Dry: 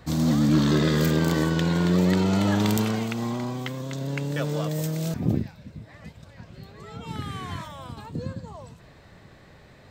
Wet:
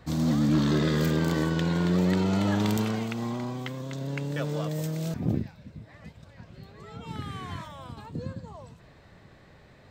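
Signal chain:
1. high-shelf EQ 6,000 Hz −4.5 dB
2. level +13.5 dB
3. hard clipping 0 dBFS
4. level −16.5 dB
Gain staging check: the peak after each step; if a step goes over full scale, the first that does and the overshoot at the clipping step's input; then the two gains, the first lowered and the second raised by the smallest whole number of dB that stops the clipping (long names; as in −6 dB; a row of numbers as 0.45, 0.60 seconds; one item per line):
−9.5, +4.0, 0.0, −16.5 dBFS
step 2, 4.0 dB
step 2 +9.5 dB, step 4 −12.5 dB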